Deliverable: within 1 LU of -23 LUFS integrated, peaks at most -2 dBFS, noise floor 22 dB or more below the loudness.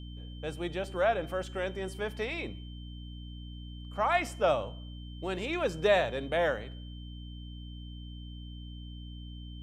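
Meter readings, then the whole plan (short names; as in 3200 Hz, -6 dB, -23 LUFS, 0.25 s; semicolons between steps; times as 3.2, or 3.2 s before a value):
hum 60 Hz; harmonics up to 300 Hz; hum level -41 dBFS; steady tone 3100 Hz; tone level -53 dBFS; loudness -31.5 LUFS; peak -13.0 dBFS; loudness target -23.0 LUFS
-> de-hum 60 Hz, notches 5; notch 3100 Hz, Q 30; gain +8.5 dB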